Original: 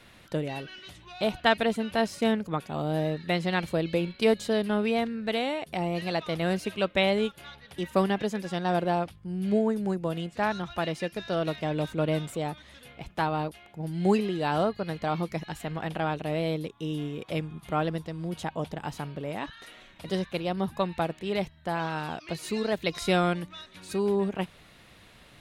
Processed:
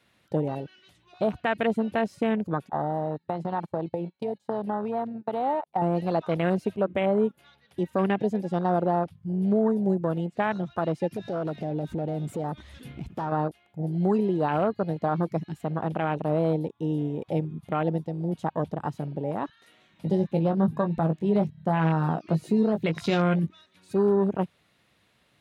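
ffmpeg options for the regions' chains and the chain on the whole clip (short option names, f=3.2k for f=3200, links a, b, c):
-filter_complex "[0:a]asettb=1/sr,asplit=3[a][b][c];[a]atrim=end=2.694[d];[b]atrim=start=2.69:end=5.82,asetpts=PTS-STARTPTS,afade=t=in:d=0.004:c=qsin,afade=t=out:st=3.126:d=0.004:c=qsin,agate=range=-22dB:threshold=-33dB:ratio=16:release=100:detection=peak,acompressor=threshold=-31dB:ratio=12:attack=3.2:release=140:knee=1:detection=peak,equalizer=f=840:t=o:w=0.52:g=14[e];[c]atrim=start=5.816[f];[d][e]acrossfade=d=0.004:c1=hsin:c2=qsin[g];[g][f]acrossfade=d=0.004:c1=qsin:c2=hsin,asettb=1/sr,asplit=3[h][i][j];[h]atrim=end=6.764[k];[i]atrim=start=6.76:end=7.39,asetpts=PTS-STARTPTS,afade=t=in:d=0.004:c=qsin,afade=t=out:st=0.626:d=0.004:c=qsin,equalizer=f=4.2k:t=o:w=1.7:g=-12,bandreject=f=60:t=h:w=6,bandreject=f=120:t=h:w=6,bandreject=f=180:t=h:w=6,bandreject=f=240:t=h:w=6,bandreject=f=300:t=h:w=6,bandreject=f=360:t=h:w=6[l];[j]atrim=start=7.386[m];[k][l]acrossfade=d=0.004:c1=hsin:c2=qsin[n];[n][m]acrossfade=d=0.004:c1=qsin:c2=hsin,asettb=1/sr,asplit=3[o][p][q];[o]atrim=end=11.114[r];[p]atrim=start=11.11:end=13.32,asetpts=PTS-STARTPTS,afade=t=in:d=0.004:c=qsin,afade=t=out:st=2.206:d=0.004:c=qsin,acompressor=threshold=-43dB:ratio=3:attack=3.2:release=140:knee=1:detection=peak,aeval=exprs='0.0335*sin(PI/2*2.24*val(0)/0.0335)':c=same[s];[q]atrim=start=13.316[t];[r][s]acrossfade=d=0.004:c1=hsin:c2=qsin[u];[u][t]acrossfade=d=0.004:c1=qsin:c2=hsin,asettb=1/sr,asplit=3[v][w][x];[v]atrim=end=19.664[y];[w]atrim=start=19.66:end=23.47,asetpts=PTS-STARTPTS,afade=t=in:d=0.004:c=qsin,afade=t=out:st=3.806:d=0.004:c=qsin,equalizer=f=170:w=1.2:g=7,acompressor=mode=upward:threshold=-44dB:ratio=2.5:attack=3.2:release=140:knee=2.83:detection=peak,asplit=2[z][aa];[aa]adelay=19,volume=-7dB[ab];[z][ab]amix=inputs=2:normalize=0,atrim=end_sample=168021[ac];[x]atrim=start=23.466[ad];[y][ac]acrossfade=d=0.004:c1=hsin:c2=qsin[ae];[ae][ad]acrossfade=d=0.004:c1=qsin:c2=hsin,highpass=82,afwtdn=0.0224,alimiter=limit=-20dB:level=0:latency=1:release=83,volume=5dB"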